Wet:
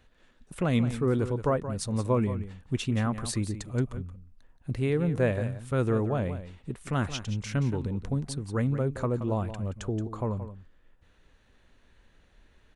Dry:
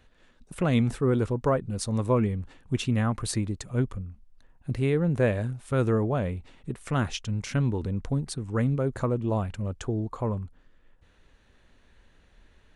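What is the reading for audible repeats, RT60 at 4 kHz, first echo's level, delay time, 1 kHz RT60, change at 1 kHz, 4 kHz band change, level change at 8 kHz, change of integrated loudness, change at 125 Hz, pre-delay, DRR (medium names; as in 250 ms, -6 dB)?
1, no reverb, -12.0 dB, 175 ms, no reverb, -2.0 dB, -1.5 dB, -1.5 dB, -2.0 dB, -2.0 dB, no reverb, no reverb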